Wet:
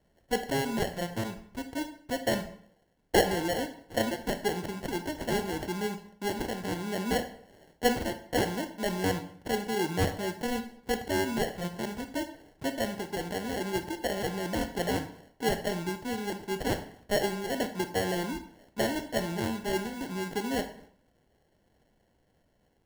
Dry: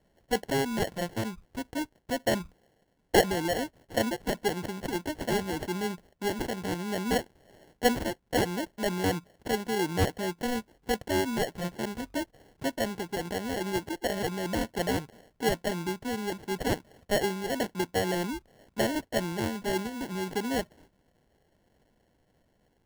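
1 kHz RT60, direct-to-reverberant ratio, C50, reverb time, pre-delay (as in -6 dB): 0.60 s, 7.5 dB, 11.0 dB, 0.60 s, 18 ms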